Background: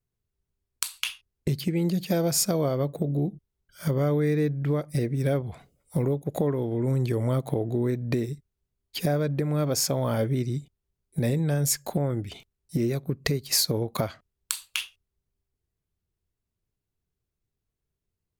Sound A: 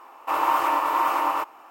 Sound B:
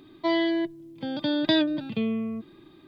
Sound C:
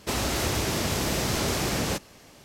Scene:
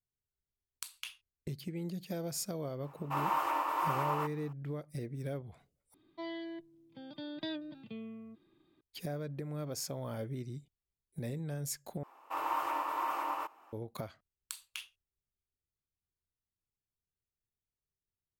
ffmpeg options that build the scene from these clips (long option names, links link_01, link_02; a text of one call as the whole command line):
ffmpeg -i bed.wav -i cue0.wav -i cue1.wav -filter_complex "[1:a]asplit=2[link_01][link_02];[0:a]volume=-14dB,asplit=3[link_03][link_04][link_05];[link_03]atrim=end=5.944[link_06];[2:a]atrim=end=2.87,asetpts=PTS-STARTPTS,volume=-17.5dB[link_07];[link_04]atrim=start=8.806:end=12.034[link_08];[link_02]atrim=end=1.7,asetpts=PTS-STARTPTS,volume=-12.5dB[link_09];[link_05]atrim=start=13.726[link_10];[link_01]atrim=end=1.7,asetpts=PTS-STARTPTS,volume=-10.5dB,afade=type=in:duration=0.004:curve=hsin,afade=type=out:start_time=1.696:duration=0.004:curve=hsin,adelay=2830[link_11];[link_06][link_07]acrossfade=duration=0.004:curve1=hsin:curve2=hsin[link_12];[link_12][link_08]acrossfade=duration=0.004:curve1=hsin:curve2=hsin[link_13];[link_13][link_09]acrossfade=duration=0.004:curve1=hsin:curve2=hsin[link_14];[link_14][link_10]acrossfade=duration=0.004:curve1=hsin:curve2=hsin[link_15];[link_15][link_11]amix=inputs=2:normalize=0" out.wav